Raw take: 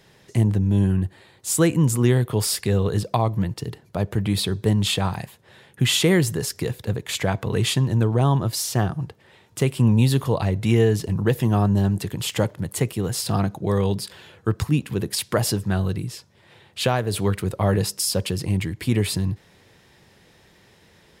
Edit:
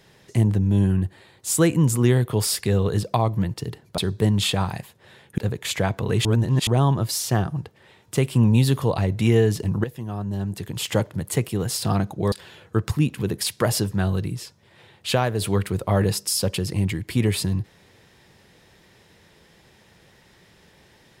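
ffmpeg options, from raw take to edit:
-filter_complex "[0:a]asplit=7[a][b][c][d][e][f][g];[a]atrim=end=3.982[h];[b]atrim=start=4.418:end=5.822[i];[c]atrim=start=6.818:end=7.692[j];[d]atrim=start=7.688:end=8.112,asetpts=PTS-STARTPTS,areverse[k];[e]atrim=start=8.108:end=11.28,asetpts=PTS-STARTPTS,afade=t=out:st=3.168:d=0.004:c=hsin:silence=0.223872[l];[f]atrim=start=11.28:end=13.762,asetpts=PTS-STARTPTS,afade=t=in:d=1.07:c=qua:silence=0.223872[m];[g]atrim=start=14.038[n];[h][i]acrossfade=d=0.004:c1=hsin:c2=hsin[o];[o][j]acrossfade=d=0.004:c1=hsin:c2=hsin[p];[p][k]acrossfade=d=0.004:c1=hsin:c2=hsin[q];[l][m]concat=n=2:v=0:a=1[r];[q][r]acrossfade=d=0.004:c1=hsin:c2=hsin[s];[s][n]acrossfade=d=0.004:c1=hsin:c2=hsin"

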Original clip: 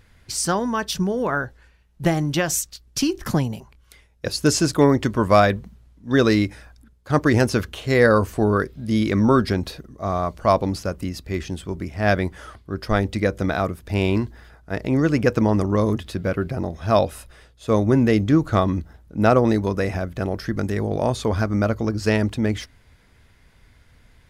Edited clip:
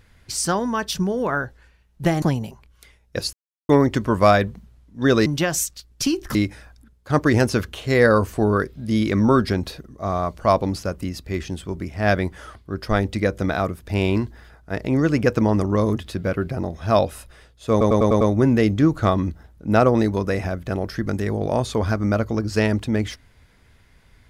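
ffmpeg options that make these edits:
-filter_complex "[0:a]asplit=11[a][b][c][d][e][f][g][h][i][j][k];[a]atrim=end=2.222[l];[b]atrim=start=3.308:end=4.42,asetpts=PTS-STARTPTS,afade=t=out:st=1.108:d=0.004:c=hsin[m];[c]atrim=start=4.42:end=4.78,asetpts=PTS-STARTPTS,volume=0[n];[d]atrim=start=4.78:end=6.352,asetpts=PTS-STARTPTS,afade=t=in:d=0.004:c=hsin[o];[e]atrim=start=2.218:end=3.312[p];[f]atrim=start=6.348:end=17.812[q];[g]atrim=start=17.708:end=17.812[r];[h]atrim=start=17.708:end=17.812[s];[i]atrim=start=17.708:end=17.812[t];[j]atrim=start=17.708:end=17.812[u];[k]atrim=start=17.708[v];[m][n][o]concat=n=3:v=0:a=1[w];[l][w]acrossfade=d=0.004:c1=hsin:c2=hsin[x];[x][p]acrossfade=d=0.004:c1=hsin:c2=hsin[y];[y][q]acrossfade=d=0.004:c1=hsin:c2=hsin[z];[z][r]acrossfade=d=0.004:c1=hsin:c2=hsin[aa];[aa][s]acrossfade=d=0.004:c1=hsin:c2=hsin[ab];[ab][t]acrossfade=d=0.004:c1=hsin:c2=hsin[ac];[ac][u]acrossfade=d=0.004:c1=hsin:c2=hsin[ad];[ad][v]acrossfade=d=0.004:c1=hsin:c2=hsin"

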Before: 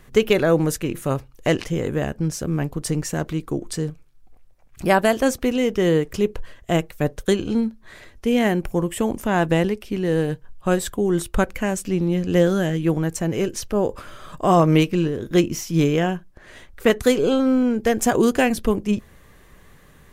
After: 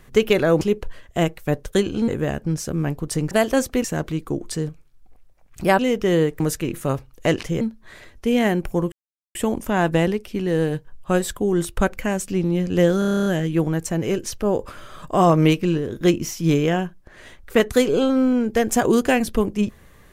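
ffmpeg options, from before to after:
-filter_complex "[0:a]asplit=18[a][b][c][d][e][f][g][h][i][j][k][l][m][n][o][p][q][r];[a]atrim=end=0.612[s];[b]atrim=start=6.138:end=7.612[t];[c]atrim=start=1.818:end=3.052[u];[d]atrim=start=4.998:end=5.532[v];[e]atrim=start=3.048:end=5.002[w];[f]atrim=start=5.528:end=6.142[x];[g]atrim=start=0.608:end=1.822[y];[h]atrim=start=7.608:end=8.92,asetpts=PTS-STARTPTS,afade=t=out:st=1.308:d=0.004:c=hsin,apad=pad_dur=0.43[z];[i]atrim=start=8.92:end=12.592,asetpts=PTS-STARTPTS,afade=t=in:d=0.004:c=hsin[aa];[j]atrim=start=12.558:end=12.592[ab];[k]atrim=start=12.558:end=12.592[ac];[l]atrim=start=12.558:end=12.592[ad];[m]atrim=start=12.558:end=12.592[ae];[n]atrim=start=12.558:end=12.592[af];[o]atrim=start=12.558:end=12.592[ag];[p]atrim=start=12.558:end=12.592[ah];[q]atrim=start=12.558:end=12.592[ai];[r]atrim=start=12.558[aj];[s][t]acrossfade=d=0.004:c1=hsin:c2=hsin[ak];[ak][u]acrossfade=d=0.004:c1=hsin:c2=hsin[al];[al][v]acrossfade=d=0.004:c1=hsin:c2=hsin[am];[am][w]acrossfade=d=0.004:c1=hsin:c2=hsin[an];[an][x]acrossfade=d=0.004:c1=hsin:c2=hsin[ao];[ao][y]acrossfade=d=0.004:c1=hsin:c2=hsin[ap];[z][aa]concat=n=2:v=0:a=1[aq];[ap][aq]acrossfade=d=0.004:c1=hsin:c2=hsin[ar];[ar][ab]acrossfade=d=0.004:c1=hsin:c2=hsin[as];[as][ac]acrossfade=d=0.004:c1=hsin:c2=hsin[at];[at][ad]acrossfade=d=0.004:c1=hsin:c2=hsin[au];[au][ae]acrossfade=d=0.004:c1=hsin:c2=hsin[av];[av][af]acrossfade=d=0.004:c1=hsin:c2=hsin[aw];[aw][ag]acrossfade=d=0.004:c1=hsin:c2=hsin[ax];[ax][ah]acrossfade=d=0.004:c1=hsin:c2=hsin[ay];[ay][ai]acrossfade=d=0.004:c1=hsin:c2=hsin[az];[az][aj]acrossfade=d=0.004:c1=hsin:c2=hsin"

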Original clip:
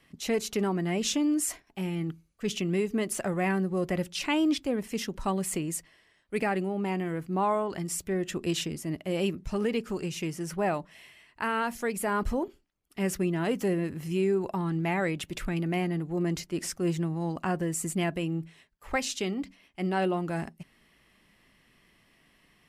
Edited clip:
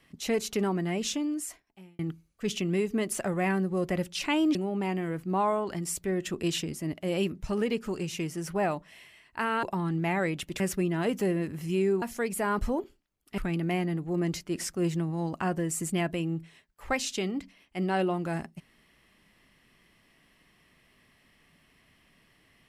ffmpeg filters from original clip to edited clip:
-filter_complex "[0:a]asplit=7[a][b][c][d][e][f][g];[a]atrim=end=1.99,asetpts=PTS-STARTPTS,afade=t=out:st=0.75:d=1.24[h];[b]atrim=start=1.99:end=4.552,asetpts=PTS-STARTPTS,afade=t=in:d=0.004:c=hsin[i];[c]atrim=start=6.578:end=11.662[j];[d]atrim=start=14.438:end=15.412[k];[e]atrim=start=13.018:end=14.442[l];[f]atrim=start=11.658:end=13.022[m];[g]atrim=start=15.408[n];[h][i]concat=n=2:v=0:a=1[o];[o][j]acrossfade=d=0.004:c1=hsin:c2=hsin[p];[p][k]acrossfade=d=0.004:c1=hsin:c2=hsin[q];[q][l]acrossfade=d=0.004:c1=hsin:c2=hsin[r];[r][m]acrossfade=d=0.004:c1=hsin:c2=hsin[s];[s][n]acrossfade=d=0.004:c1=hsin:c2=hsin"

